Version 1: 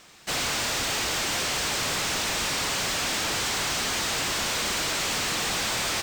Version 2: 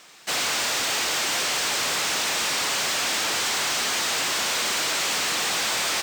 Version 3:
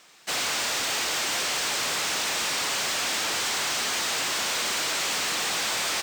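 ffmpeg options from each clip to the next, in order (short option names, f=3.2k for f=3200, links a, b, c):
-af "highpass=f=420:p=1,volume=3dB"
-af "aeval=exprs='0.141*(cos(1*acos(clip(val(0)/0.141,-1,1)))-cos(1*PI/2))+0.00501*(cos(7*acos(clip(val(0)/0.141,-1,1)))-cos(7*PI/2))':c=same,volume=-2.5dB"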